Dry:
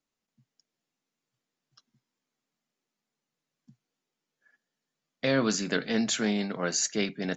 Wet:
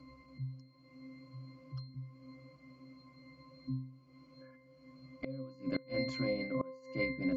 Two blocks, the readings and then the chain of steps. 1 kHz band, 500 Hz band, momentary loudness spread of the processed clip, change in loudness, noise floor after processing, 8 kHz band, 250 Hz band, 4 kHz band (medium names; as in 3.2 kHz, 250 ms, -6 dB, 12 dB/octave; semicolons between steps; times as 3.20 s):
-11.0 dB, -7.5 dB, 22 LU, -12.5 dB, -62 dBFS, no reading, -8.0 dB, -14.0 dB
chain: upward compressor, threshold -30 dBFS; pitch-class resonator C, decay 0.53 s; inverted gate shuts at -40 dBFS, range -24 dB; trim +17.5 dB